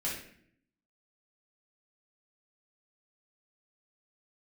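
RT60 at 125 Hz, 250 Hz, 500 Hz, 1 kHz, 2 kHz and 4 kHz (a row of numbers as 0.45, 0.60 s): 0.95, 0.95, 0.70, 0.55, 0.65, 0.50 s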